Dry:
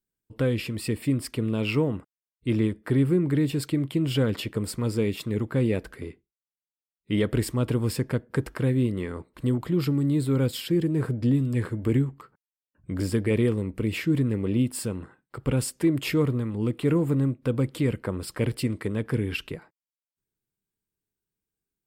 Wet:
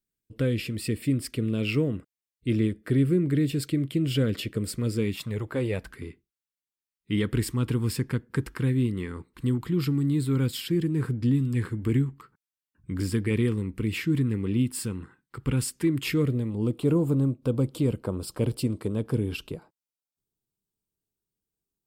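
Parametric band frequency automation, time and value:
parametric band −14.5 dB 0.73 octaves
0:04.94 890 Hz
0:05.57 150 Hz
0:05.96 620 Hz
0:16.08 620 Hz
0:16.61 1,900 Hz

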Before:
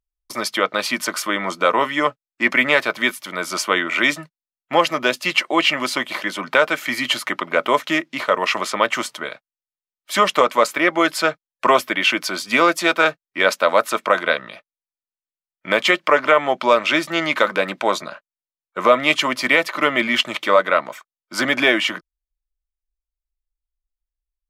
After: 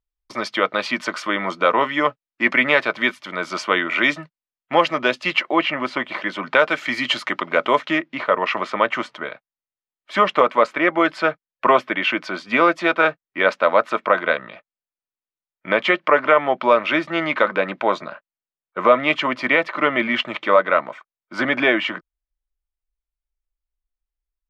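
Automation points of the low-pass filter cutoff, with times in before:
0:05.28 3,700 Hz
0:05.72 1,900 Hz
0:06.84 4,700 Hz
0:07.61 4,700 Hz
0:08.08 2,500 Hz

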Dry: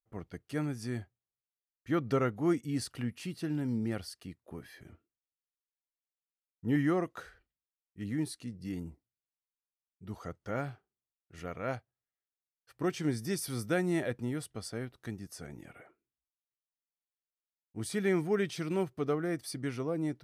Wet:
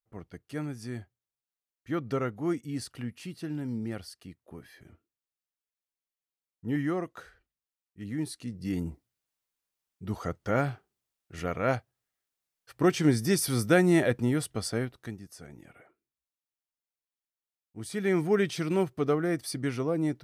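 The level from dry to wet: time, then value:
0:08.04 −1 dB
0:08.87 +8.5 dB
0:14.78 +8.5 dB
0:15.24 −2 dB
0:17.84 −2 dB
0:18.26 +5 dB

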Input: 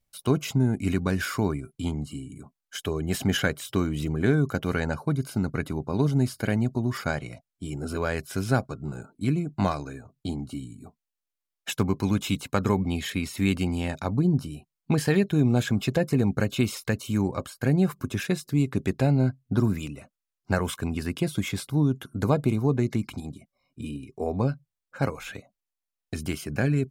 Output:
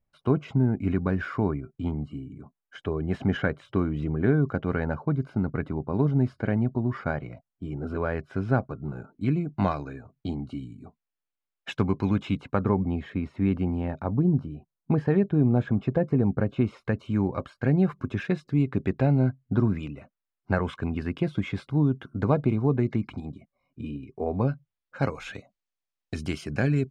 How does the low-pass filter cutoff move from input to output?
0:08.73 1,600 Hz
0:09.38 2,800 Hz
0:11.99 2,800 Hz
0:12.81 1,200 Hz
0:16.49 1,200 Hz
0:17.33 2,300 Hz
0:24.28 2,300 Hz
0:25.25 5,600 Hz

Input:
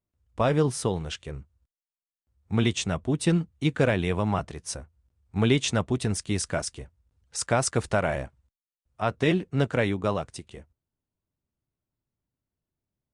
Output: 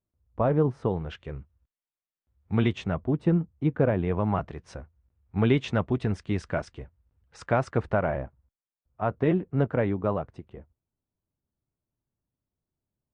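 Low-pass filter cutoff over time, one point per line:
0:00.73 1,100 Hz
0:01.36 2,700 Hz
0:02.54 2,700 Hz
0:03.28 1,100 Hz
0:03.93 1,100 Hz
0:04.48 2,200 Hz
0:07.38 2,200 Hz
0:08.20 1,300 Hz

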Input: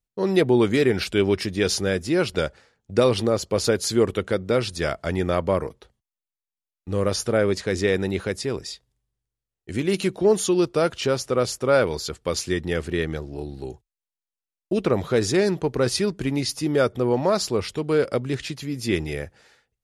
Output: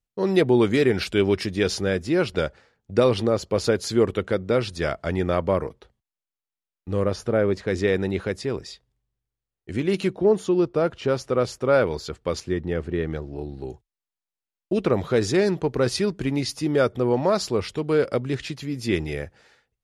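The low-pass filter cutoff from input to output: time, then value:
low-pass filter 6 dB per octave
7,400 Hz
from 0:01.63 3,800 Hz
from 0:07.04 1,500 Hz
from 0:07.68 3,200 Hz
from 0:10.13 1,200 Hz
from 0:11.08 2,600 Hz
from 0:12.40 1,000 Hz
from 0:13.05 2,200 Hz
from 0:13.69 5,400 Hz

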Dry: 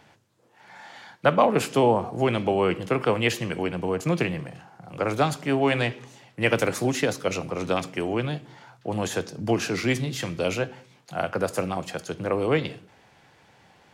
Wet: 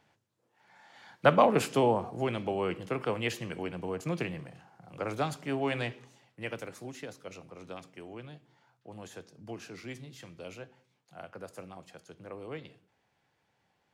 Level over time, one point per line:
0:00.88 −13 dB
0:01.27 −2 dB
0:02.36 −9 dB
0:05.96 −9 dB
0:06.69 −18.5 dB

